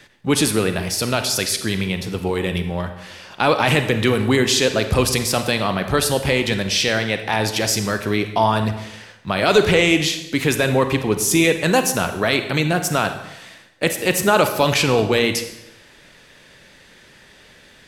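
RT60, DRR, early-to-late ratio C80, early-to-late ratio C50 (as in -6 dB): 0.90 s, 8.0 dB, 11.0 dB, 9.0 dB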